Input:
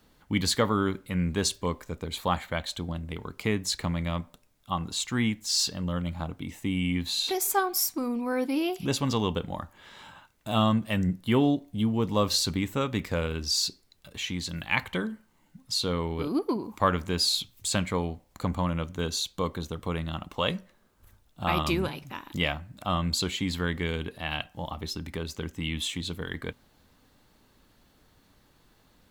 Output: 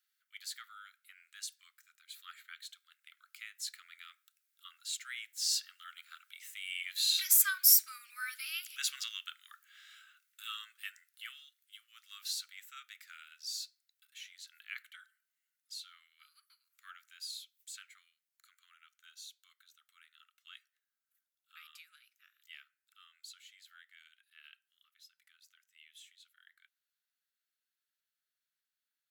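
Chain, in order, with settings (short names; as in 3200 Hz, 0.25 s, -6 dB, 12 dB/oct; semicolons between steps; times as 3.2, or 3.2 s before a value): Doppler pass-by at 7.79, 5 m/s, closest 4.9 m; steep high-pass 1300 Hz 96 dB/oct; high shelf 10000 Hz +10 dB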